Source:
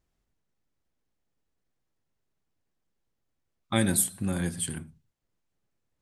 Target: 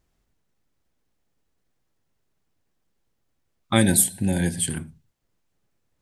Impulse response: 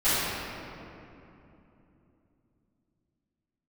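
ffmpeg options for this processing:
-filter_complex "[0:a]asplit=3[a][b][c];[a]afade=t=out:st=3.81:d=0.02[d];[b]asuperstop=centerf=1200:order=12:qfactor=2.3,afade=t=in:st=3.81:d=0.02,afade=t=out:st=4.69:d=0.02[e];[c]afade=t=in:st=4.69:d=0.02[f];[d][e][f]amix=inputs=3:normalize=0,volume=6.5dB"

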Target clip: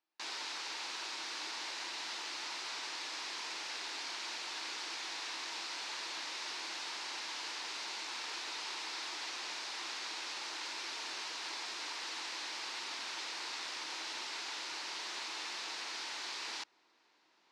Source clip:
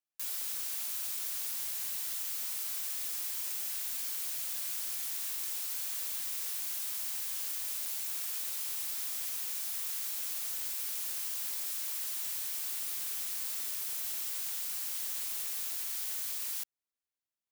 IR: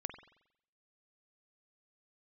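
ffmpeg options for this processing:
-af "areverse,acompressor=mode=upward:threshold=-56dB:ratio=2.5,areverse,highpass=300,equalizer=f=330:t=q:w=4:g=9,equalizer=f=560:t=q:w=4:g=-3,equalizer=f=920:t=q:w=4:g=7,equalizer=f=3.2k:t=q:w=4:g=-4,lowpass=f=4.7k:w=0.5412,lowpass=f=4.7k:w=1.3066,volume=8dB"

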